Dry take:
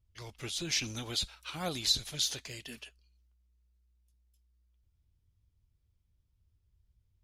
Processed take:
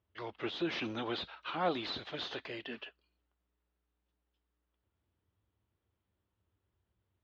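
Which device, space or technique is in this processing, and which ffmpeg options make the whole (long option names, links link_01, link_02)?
overdrive pedal into a guitar cabinet: -filter_complex "[0:a]asplit=2[link_01][link_02];[link_02]highpass=frequency=720:poles=1,volume=19dB,asoftclip=type=tanh:threshold=-15.5dB[link_03];[link_01][link_03]amix=inputs=2:normalize=0,lowpass=frequency=1100:poles=1,volume=-6dB,highpass=100,equalizer=frequency=140:width_type=q:width=4:gain=-9,equalizer=frequency=340:width_type=q:width=4:gain=3,equalizer=frequency=2300:width_type=q:width=4:gain=-5,lowpass=frequency=3600:width=0.5412,lowpass=frequency=3600:width=1.3066,volume=-1dB"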